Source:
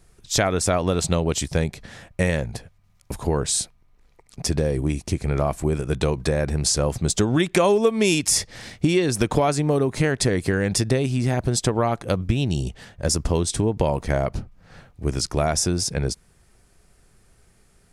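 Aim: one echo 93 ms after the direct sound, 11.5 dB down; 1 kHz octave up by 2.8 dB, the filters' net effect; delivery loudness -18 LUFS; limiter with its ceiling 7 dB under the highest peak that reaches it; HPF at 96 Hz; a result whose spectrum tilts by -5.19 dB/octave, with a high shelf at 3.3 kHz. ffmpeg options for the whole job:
-af "highpass=96,equalizer=f=1000:t=o:g=4.5,highshelf=f=3300:g=-6.5,alimiter=limit=0.266:level=0:latency=1,aecho=1:1:93:0.266,volume=2.11"

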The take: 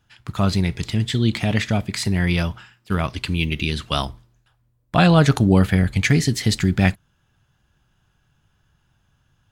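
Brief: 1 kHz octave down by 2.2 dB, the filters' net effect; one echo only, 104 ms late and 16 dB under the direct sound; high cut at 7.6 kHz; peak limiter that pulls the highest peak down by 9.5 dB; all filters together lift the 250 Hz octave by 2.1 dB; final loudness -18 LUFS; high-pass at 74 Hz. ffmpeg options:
-af "highpass=74,lowpass=7600,equalizer=f=250:t=o:g=3.5,equalizer=f=1000:t=o:g=-3.5,alimiter=limit=0.282:level=0:latency=1,aecho=1:1:104:0.158,volume=1.78"

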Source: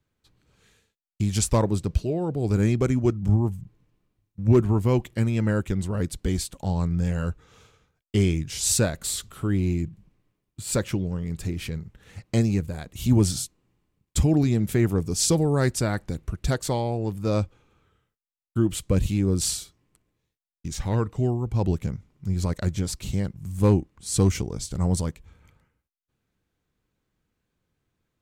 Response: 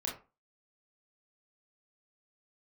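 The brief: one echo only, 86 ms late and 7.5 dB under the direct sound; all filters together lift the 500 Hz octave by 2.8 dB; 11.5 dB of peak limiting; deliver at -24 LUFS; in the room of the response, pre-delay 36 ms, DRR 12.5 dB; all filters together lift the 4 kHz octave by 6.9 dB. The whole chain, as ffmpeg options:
-filter_complex "[0:a]equalizer=f=500:t=o:g=3.5,equalizer=f=4000:t=o:g=8.5,alimiter=limit=0.133:level=0:latency=1,aecho=1:1:86:0.422,asplit=2[s0][s1];[1:a]atrim=start_sample=2205,adelay=36[s2];[s1][s2]afir=irnorm=-1:irlink=0,volume=0.178[s3];[s0][s3]amix=inputs=2:normalize=0,volume=1.5"

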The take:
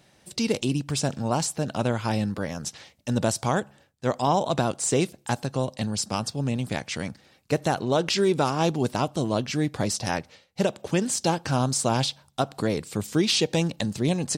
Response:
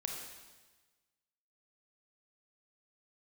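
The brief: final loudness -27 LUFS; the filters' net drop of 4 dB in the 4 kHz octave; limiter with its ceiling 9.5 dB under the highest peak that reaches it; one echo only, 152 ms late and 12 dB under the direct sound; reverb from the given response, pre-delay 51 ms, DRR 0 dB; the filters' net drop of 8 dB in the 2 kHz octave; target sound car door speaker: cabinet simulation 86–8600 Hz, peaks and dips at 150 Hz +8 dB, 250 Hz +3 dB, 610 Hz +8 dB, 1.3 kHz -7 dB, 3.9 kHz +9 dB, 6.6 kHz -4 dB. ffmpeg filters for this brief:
-filter_complex "[0:a]equalizer=f=2000:t=o:g=-7.5,equalizer=f=4000:t=o:g=-8,alimiter=limit=0.0891:level=0:latency=1,aecho=1:1:152:0.251,asplit=2[s0][s1];[1:a]atrim=start_sample=2205,adelay=51[s2];[s1][s2]afir=irnorm=-1:irlink=0,volume=0.944[s3];[s0][s3]amix=inputs=2:normalize=0,highpass=86,equalizer=f=150:t=q:w=4:g=8,equalizer=f=250:t=q:w=4:g=3,equalizer=f=610:t=q:w=4:g=8,equalizer=f=1300:t=q:w=4:g=-7,equalizer=f=3900:t=q:w=4:g=9,equalizer=f=6600:t=q:w=4:g=-4,lowpass=f=8600:w=0.5412,lowpass=f=8600:w=1.3066,volume=0.841"

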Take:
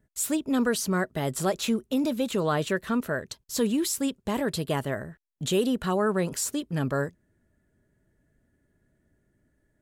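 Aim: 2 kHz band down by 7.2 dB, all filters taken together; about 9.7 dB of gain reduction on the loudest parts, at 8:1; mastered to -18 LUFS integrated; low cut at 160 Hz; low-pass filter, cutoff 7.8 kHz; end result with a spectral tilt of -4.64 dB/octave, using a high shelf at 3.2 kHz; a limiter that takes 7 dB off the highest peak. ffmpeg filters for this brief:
-af "highpass=160,lowpass=7800,equalizer=f=2000:t=o:g=-8.5,highshelf=f=3200:g=-6,acompressor=threshold=0.0251:ratio=8,volume=11.9,alimiter=limit=0.376:level=0:latency=1"

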